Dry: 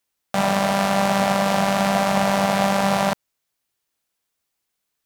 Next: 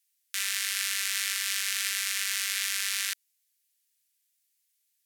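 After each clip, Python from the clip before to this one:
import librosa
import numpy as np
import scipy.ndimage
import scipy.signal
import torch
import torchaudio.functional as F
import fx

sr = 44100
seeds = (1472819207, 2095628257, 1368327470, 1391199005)

y = scipy.signal.sosfilt(scipy.signal.butter(6, 1700.0, 'highpass', fs=sr, output='sos'), x)
y = fx.peak_eq(y, sr, hz=12000.0, db=10.5, octaves=2.0)
y = y * 10.0 ** (-5.0 / 20.0)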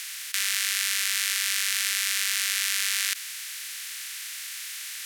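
y = fx.bin_compress(x, sr, power=0.2)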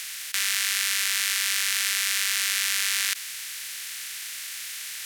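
y = fx.leveller(x, sr, passes=1)
y = y * 10.0 ** (-2.0 / 20.0)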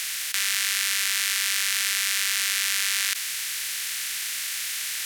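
y = fx.env_flatten(x, sr, amount_pct=50)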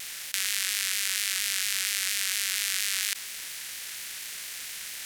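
y = fx.power_curve(x, sr, exponent=1.4)
y = fx.vibrato_shape(y, sr, shape='saw_down', rate_hz=4.3, depth_cents=100.0)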